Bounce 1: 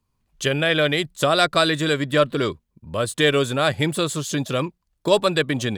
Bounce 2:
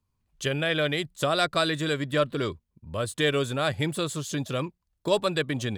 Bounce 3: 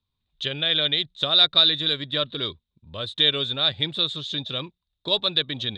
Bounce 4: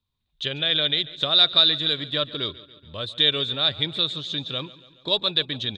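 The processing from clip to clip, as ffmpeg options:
-af "equalizer=f=83:w=1.3:g=5.5,volume=-6.5dB"
-af "lowpass=f=3.7k:t=q:w=14,volume=-5dB"
-af "aecho=1:1:141|282|423|564|705:0.119|0.0689|0.04|0.0232|0.0134"

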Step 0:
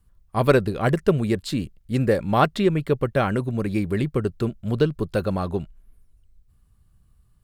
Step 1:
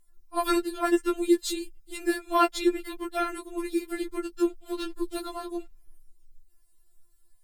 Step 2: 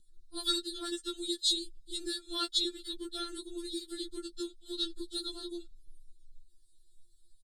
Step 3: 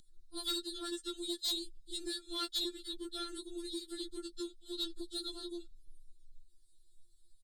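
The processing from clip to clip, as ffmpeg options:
-af "bass=f=250:g=5,treble=f=4k:g=11,tremolo=f=54:d=0.571,afftfilt=real='re*4*eq(mod(b,16),0)':imag='im*4*eq(mod(b,16),0)':win_size=2048:overlap=0.75"
-filter_complex "[0:a]highshelf=f=4.2k:g=9.5,acrossover=split=790[a][b];[a]acompressor=threshold=-36dB:ratio=6[c];[c][b]amix=inputs=2:normalize=0,firequalizer=gain_entry='entry(250,0);entry(430,-5);entry(650,-21);entry(980,-24);entry(1500,-12);entry(2300,-28);entry(3600,7);entry(5600,-9);entry(8900,-8);entry(13000,-25)':delay=0.05:min_phase=1"
-af "acompressor=mode=upward:threshold=-57dB:ratio=2.5,asoftclip=type=tanh:threshold=-28dB,volume=-2dB"

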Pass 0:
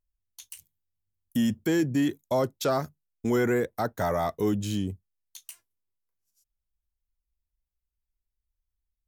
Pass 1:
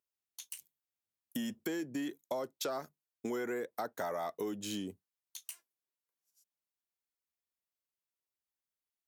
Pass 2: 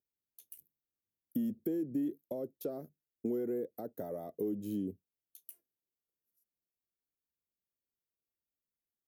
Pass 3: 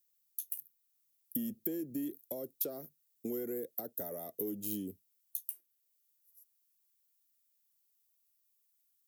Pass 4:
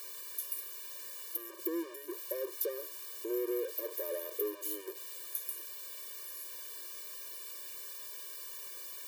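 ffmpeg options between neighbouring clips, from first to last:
-af "highpass=300,acompressor=threshold=-33dB:ratio=6,volume=-1.5dB"
-af "firequalizer=gain_entry='entry(290,0);entry(520,-4);entry(970,-24);entry(7300,-24);entry(12000,-6)':delay=0.05:min_phase=1,volume=4dB"
-filter_complex "[0:a]acrossover=split=420|1000|3600[a][b][c][d];[d]alimiter=level_in=13.5dB:limit=-24dB:level=0:latency=1:release=498,volume=-13.5dB[e];[a][b][c][e]amix=inputs=4:normalize=0,crystalizer=i=8:c=0,volume=-4.5dB"
-af "aeval=exprs='val(0)+0.5*0.0133*sgn(val(0))':c=same,afftfilt=real='re*eq(mod(floor(b*sr/1024/310),2),1)':imag='im*eq(mod(floor(b*sr/1024/310),2),1)':win_size=1024:overlap=0.75,volume=2dB"

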